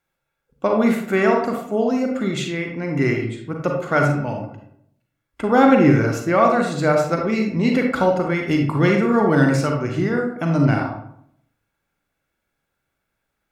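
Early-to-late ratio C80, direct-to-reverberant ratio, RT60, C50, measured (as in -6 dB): 7.0 dB, 1.5 dB, 0.70 s, 4.0 dB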